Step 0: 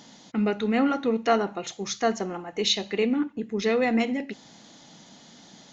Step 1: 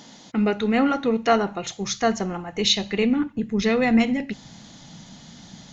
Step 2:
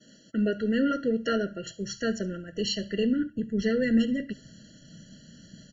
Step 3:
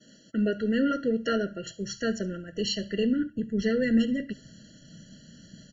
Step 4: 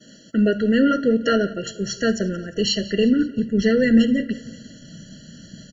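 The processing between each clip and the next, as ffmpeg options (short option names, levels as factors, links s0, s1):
-af "asubboost=boost=7:cutoff=140,volume=1.58"
-af "agate=range=0.0224:threshold=0.00708:ratio=3:detection=peak,aecho=1:1:71:0.075,afftfilt=real='re*eq(mod(floor(b*sr/1024/670),2),0)':imag='im*eq(mod(floor(b*sr/1024/670),2),0)':win_size=1024:overlap=0.75,volume=0.596"
-af anull
-af "aecho=1:1:177|354|531|708:0.106|0.0583|0.032|0.0176,volume=2.51"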